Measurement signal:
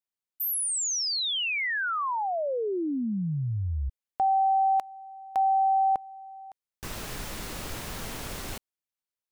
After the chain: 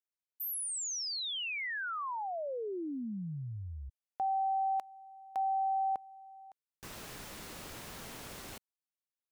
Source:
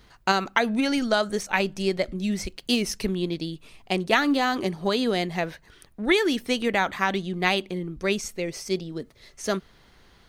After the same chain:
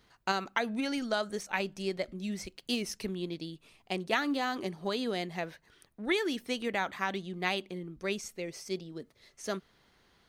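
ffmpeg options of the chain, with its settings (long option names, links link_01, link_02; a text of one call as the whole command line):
ffmpeg -i in.wav -af "lowshelf=frequency=66:gain=-11.5,volume=-8.5dB" out.wav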